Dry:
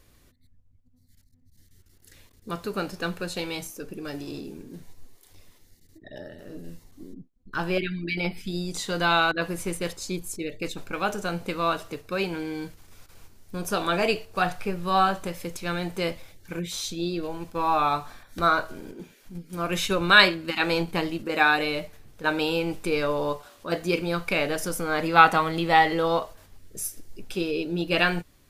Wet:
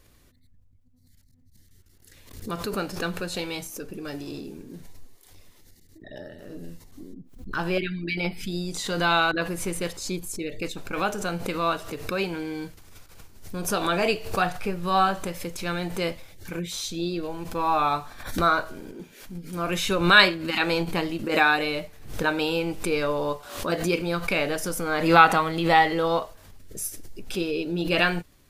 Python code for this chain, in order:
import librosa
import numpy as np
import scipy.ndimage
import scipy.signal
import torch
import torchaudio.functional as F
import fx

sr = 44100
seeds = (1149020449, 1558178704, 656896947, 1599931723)

y = fx.pre_swell(x, sr, db_per_s=80.0)